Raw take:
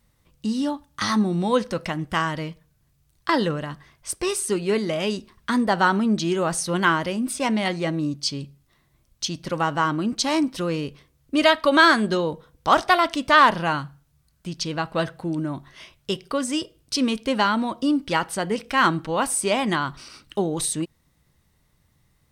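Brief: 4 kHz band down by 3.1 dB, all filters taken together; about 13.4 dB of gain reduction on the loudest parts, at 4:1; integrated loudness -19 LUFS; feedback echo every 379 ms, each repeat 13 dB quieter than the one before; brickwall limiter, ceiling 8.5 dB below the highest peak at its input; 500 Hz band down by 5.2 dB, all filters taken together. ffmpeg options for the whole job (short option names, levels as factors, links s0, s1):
-af "equalizer=f=500:t=o:g=-7,equalizer=f=4000:t=o:g=-4,acompressor=threshold=0.0398:ratio=4,alimiter=limit=0.075:level=0:latency=1,aecho=1:1:379|758|1137:0.224|0.0493|0.0108,volume=5.01"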